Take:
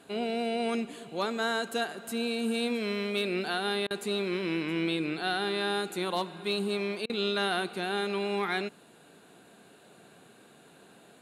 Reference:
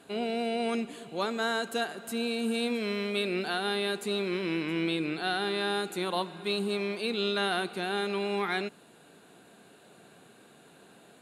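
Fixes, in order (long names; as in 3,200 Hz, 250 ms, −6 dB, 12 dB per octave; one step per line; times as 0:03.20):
clipped peaks rebuilt −20 dBFS
repair the gap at 0:03.87/0:07.06, 35 ms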